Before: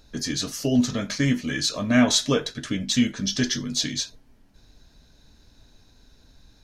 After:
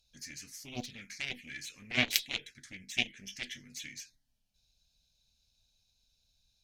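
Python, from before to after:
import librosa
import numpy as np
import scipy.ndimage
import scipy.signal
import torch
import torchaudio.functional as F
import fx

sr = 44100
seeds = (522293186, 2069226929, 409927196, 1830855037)

y = fx.env_phaser(x, sr, low_hz=320.0, high_hz=1800.0, full_db=-15.5)
y = fx.cheby_harmonics(y, sr, harmonics=(3, 5, 8), levels_db=(-8, -35, -41), full_scale_db=-6.0)
y = fx.high_shelf_res(y, sr, hz=1600.0, db=11.0, q=3.0)
y = y * librosa.db_to_amplitude(-3.0)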